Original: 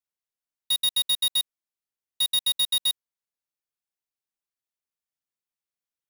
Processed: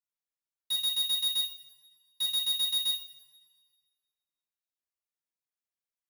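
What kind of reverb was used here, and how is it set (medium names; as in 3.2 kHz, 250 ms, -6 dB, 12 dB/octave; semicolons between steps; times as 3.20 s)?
two-slope reverb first 0.4 s, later 1.7 s, from -18 dB, DRR 0.5 dB; trim -9 dB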